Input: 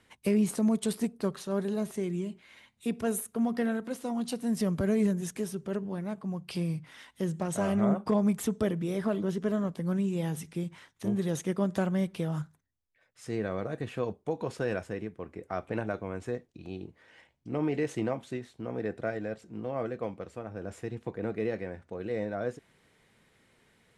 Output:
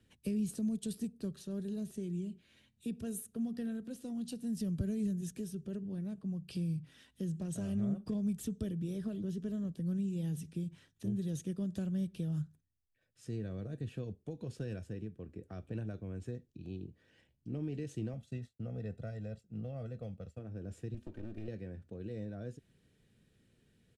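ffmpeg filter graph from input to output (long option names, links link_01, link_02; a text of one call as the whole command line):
ffmpeg -i in.wav -filter_complex "[0:a]asettb=1/sr,asplit=3[link_01][link_02][link_03];[link_01]atrim=end=18.134[link_04];[link_02]atrim=start=18.13:end=20.39,asetpts=PTS-STARTPTS,afade=type=in:duration=0.004:curve=qsin,afade=type=out:start_time=2.256:duration=0.004:curve=qsin,aecho=1:1:1.5:0.65,atrim=end_sample=99666,agate=range=-33dB:threshold=-46dB:ratio=3:release=100:detection=peak[link_05];[link_03]atrim=start=20.386[link_06];[link_04][link_05]acrossfade=duration=0.004:curve1=hsin:curve2=qsin[link_07];[link_07][link_06]acrossfade=duration=0.004:curve1=qsin:curve2=hsin,asettb=1/sr,asplit=3[link_08][link_09][link_10];[link_08]atrim=end=20.944[link_11];[link_09]atrim=start=20.94:end=21.48,asetpts=PTS-STARTPTS,afade=type=in:duration=0.004:curve=qsin,afade=type=out:start_time=0.536:duration=0.004:curve=qsin,aecho=1:1:3.3:0.99,atrim=end_sample=23814,acompressor=threshold=-34dB:ratio=4:attack=3.2:release=140:knee=1:detection=peak,aeval=exprs='clip(val(0),-1,0.00335)':channel_layout=same[link_12];[link_10]atrim=start=21.476[link_13];[link_11][link_12]acrossfade=duration=0.004:curve1=hsin:curve2=qsin[link_14];[link_14][link_13]acrossfade=duration=0.004:curve1=qsin:curve2=hsin,bandreject=frequency=2100:width=6.9,acrossover=split=130|3000[link_15][link_16][link_17];[link_16]acompressor=threshold=-39dB:ratio=2[link_18];[link_15][link_18][link_17]amix=inputs=3:normalize=0,firequalizer=gain_entry='entry(110,0);entry(930,-21);entry(1600,-13);entry(2900,-10)':delay=0.05:min_phase=1,volume=1.5dB" out.wav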